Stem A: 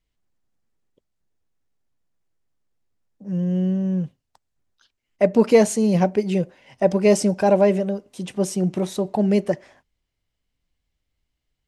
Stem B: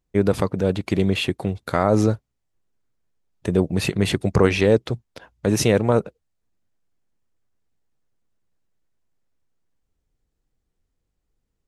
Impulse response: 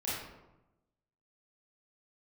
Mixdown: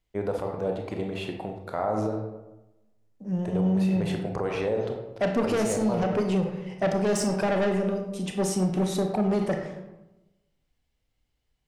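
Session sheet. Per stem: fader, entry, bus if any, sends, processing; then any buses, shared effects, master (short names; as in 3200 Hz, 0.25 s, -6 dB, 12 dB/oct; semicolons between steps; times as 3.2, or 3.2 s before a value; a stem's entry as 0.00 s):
-3.0 dB, 0.00 s, send -5.5 dB, soft clip -19 dBFS, distortion -8 dB
-18.5 dB, 0.00 s, send -4.5 dB, bell 740 Hz +13 dB 1.7 oct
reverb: on, RT60 0.95 s, pre-delay 25 ms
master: limiter -17.5 dBFS, peak gain reduction 8.5 dB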